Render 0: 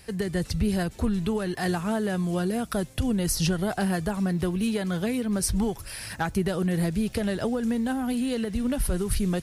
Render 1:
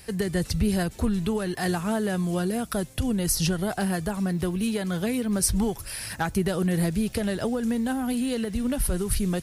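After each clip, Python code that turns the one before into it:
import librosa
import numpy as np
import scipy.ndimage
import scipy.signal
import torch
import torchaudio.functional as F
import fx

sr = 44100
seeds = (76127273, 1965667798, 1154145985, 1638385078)

y = fx.high_shelf(x, sr, hz=7800.0, db=5.5)
y = fx.rider(y, sr, range_db=10, speed_s=2.0)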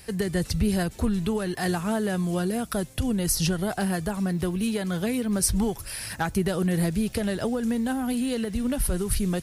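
y = x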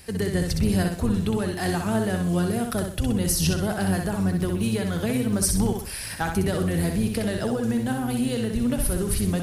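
y = fx.octave_divider(x, sr, octaves=1, level_db=-6.0)
y = fx.echo_feedback(y, sr, ms=63, feedback_pct=37, wet_db=-5)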